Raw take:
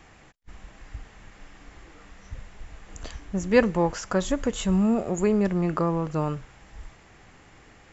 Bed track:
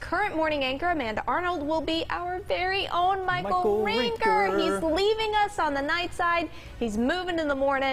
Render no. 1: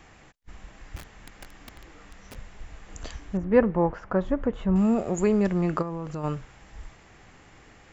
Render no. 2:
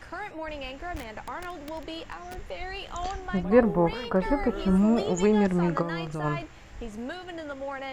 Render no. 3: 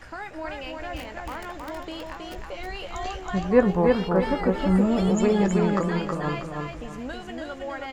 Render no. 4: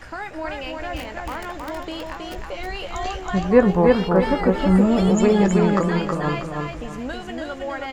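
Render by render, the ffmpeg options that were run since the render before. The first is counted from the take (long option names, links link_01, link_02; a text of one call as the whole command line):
ffmpeg -i in.wav -filter_complex "[0:a]asettb=1/sr,asplit=3[link_01][link_02][link_03];[link_01]atrim=end=0.964[link_04];[link_02]atrim=start=0.96:end=2.35,asetpts=PTS-STARTPTS,afade=type=in:duration=0.004:curve=qsin,afade=type=out:start_time=1.386:duration=0.004:curve=qsin,aeval=exprs='(mod(70.8*val(0)+1,2)-1)/70.8':channel_layout=same[link_05];[link_03]atrim=start=2.346[link_06];[link_04][link_05]acrossfade=duration=0.004:curve1=hsin:curve2=qsin[link_07];[link_07][link_06]acrossfade=duration=0.004:curve1=qsin:curve2=hsin,asettb=1/sr,asplit=3[link_08][link_09][link_10];[link_08]atrim=end=3.374[link_11];[link_09]atrim=start=3.37:end=4.76,asetpts=PTS-STARTPTS,afade=type=in:duration=0.004:curve=qsin,afade=type=out:start_time=1.386:duration=0.004:curve=qsin,lowpass=1400[link_12];[link_10]atrim=start=4.756[link_13];[link_11][link_12]acrossfade=duration=0.004:curve1=hsin:curve2=qsin[link_14];[link_14][link_13]acrossfade=duration=0.004:curve1=qsin:curve2=hsin,asplit=3[link_15][link_16][link_17];[link_15]afade=type=out:start_time=5.81:duration=0.02[link_18];[link_16]acompressor=threshold=-30dB:ratio=5:attack=3.2:release=140:knee=1:detection=peak,afade=type=in:start_time=5.81:duration=0.02,afade=type=out:start_time=6.23:duration=0.02[link_19];[link_17]afade=type=in:start_time=6.23:duration=0.02[link_20];[link_18][link_19][link_20]amix=inputs=3:normalize=0" out.wav
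ffmpeg -i in.wav -i bed.wav -filter_complex "[1:a]volume=-10.5dB[link_01];[0:a][link_01]amix=inputs=2:normalize=0" out.wav
ffmpeg -i in.wav -filter_complex "[0:a]asplit=2[link_01][link_02];[link_02]adelay=16,volume=-12dB[link_03];[link_01][link_03]amix=inputs=2:normalize=0,aecho=1:1:320|640|960|1280:0.668|0.221|0.0728|0.024" out.wav
ffmpeg -i in.wav -af "volume=4.5dB,alimiter=limit=-2dB:level=0:latency=1" out.wav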